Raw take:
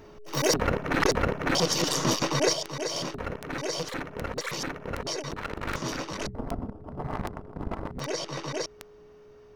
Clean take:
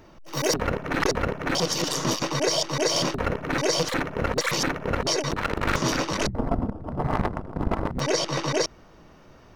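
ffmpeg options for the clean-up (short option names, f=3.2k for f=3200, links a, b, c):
-af "adeclick=t=4,bandreject=f=420:w=30,asetnsamples=n=441:p=0,asendcmd='2.53 volume volume 8dB',volume=0dB"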